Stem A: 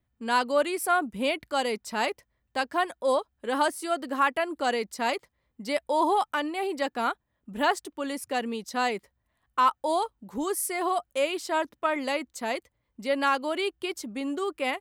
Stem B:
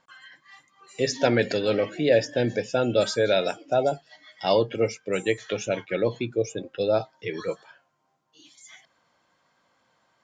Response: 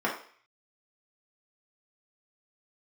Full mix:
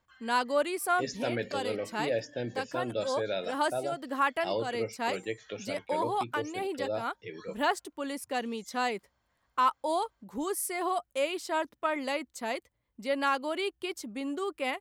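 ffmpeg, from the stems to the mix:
-filter_complex "[0:a]volume=-3.5dB[a];[1:a]volume=-11dB,asplit=2[b][c];[c]apad=whole_len=652926[d];[a][d]sidechaincompress=threshold=-37dB:ratio=4:attack=23:release=286[e];[e][b]amix=inputs=2:normalize=0"

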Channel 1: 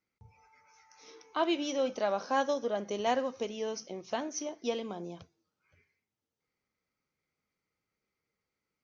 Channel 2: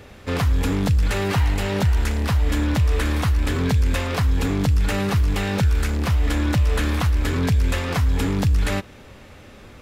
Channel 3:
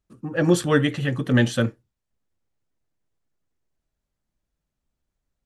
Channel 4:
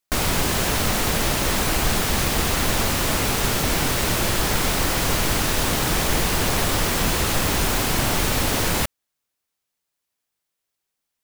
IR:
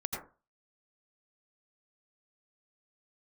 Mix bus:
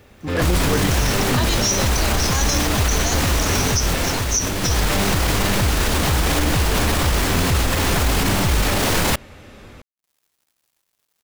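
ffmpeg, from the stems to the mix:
-filter_complex "[0:a]aexciter=amount=11.8:drive=3.5:freq=4.5k,tiltshelf=f=970:g=-8,volume=-2dB[a];[1:a]volume=-6dB[b];[2:a]volume=-3.5dB[c];[3:a]highshelf=f=8.4k:g=-4.5,acompressor=mode=upward:threshold=-35dB:ratio=2.5,adelay=300,volume=0dB[d];[c][d]amix=inputs=2:normalize=0,aeval=exprs='sgn(val(0))*max(abs(val(0))-0.00316,0)':c=same,alimiter=limit=-16dB:level=0:latency=1:release=13,volume=0dB[e];[a][b][e]amix=inputs=3:normalize=0,dynaudnorm=f=170:g=3:m=8dB,alimiter=limit=-9dB:level=0:latency=1:release=53"

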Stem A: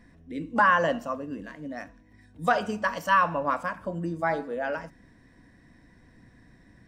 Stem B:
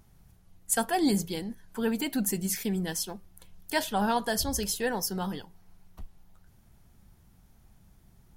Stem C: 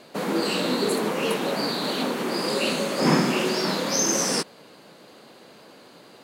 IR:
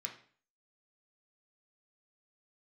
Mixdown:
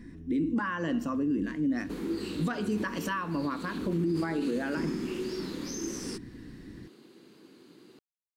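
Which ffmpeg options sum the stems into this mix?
-filter_complex "[0:a]volume=0.5dB[a];[2:a]acompressor=threshold=-30dB:ratio=2.5,adelay=1750,volume=-13dB[b];[a][b]amix=inputs=2:normalize=0,tiltshelf=f=780:g=-3,acompressor=threshold=-28dB:ratio=10,volume=0dB,lowshelf=f=460:t=q:w=3:g=9.5,alimiter=limit=-22dB:level=0:latency=1:release=28"

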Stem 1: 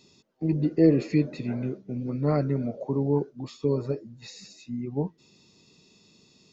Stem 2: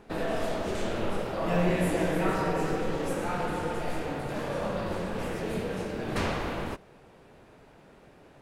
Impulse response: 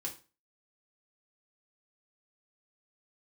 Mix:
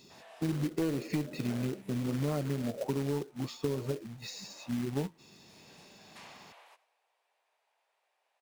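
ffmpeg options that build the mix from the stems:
-filter_complex "[0:a]asoftclip=type=tanh:threshold=-12.5dB,acrusher=bits=3:mode=log:mix=0:aa=0.000001,volume=1dB,asplit=2[a][b];[1:a]highpass=f=760:w=0.5412,highpass=f=760:w=1.3066,equalizer=f=1.4k:w=2.3:g=-8,volume=-15.5dB,asplit=2[c][d];[d]volume=-18.5dB[e];[b]apad=whole_len=371123[f];[c][f]sidechaincompress=threshold=-38dB:ratio=8:attack=12:release=593[g];[e]aecho=0:1:93|186|279|372|465|558|651:1|0.48|0.23|0.111|0.0531|0.0255|0.0122[h];[a][g][h]amix=inputs=3:normalize=0,acompressor=threshold=-29dB:ratio=6"

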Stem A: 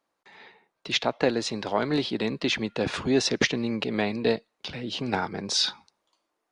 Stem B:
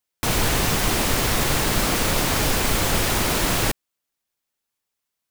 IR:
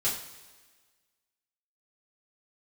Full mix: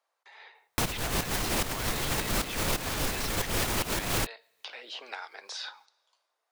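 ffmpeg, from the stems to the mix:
-filter_complex "[0:a]highpass=f=530:w=0.5412,highpass=f=530:w=1.3066,acrossover=split=1100|2400[a][b][c];[a]acompressor=threshold=-48dB:ratio=4[d];[b]acompressor=threshold=-40dB:ratio=4[e];[c]acompressor=threshold=-43dB:ratio=4[f];[d][e][f]amix=inputs=3:normalize=0,volume=-1.5dB,asplit=3[g][h][i];[h]volume=-23.5dB[j];[1:a]dynaudnorm=f=110:g=5:m=11.5dB,alimiter=limit=-6.5dB:level=0:latency=1:release=11,adelay=550,volume=-3dB[k];[i]apad=whole_len=258281[l];[k][l]sidechaincompress=threshold=-49dB:ratio=12:attack=7.3:release=124[m];[2:a]atrim=start_sample=2205[n];[j][n]afir=irnorm=-1:irlink=0[o];[g][m][o]amix=inputs=3:normalize=0,acompressor=threshold=-25dB:ratio=6"

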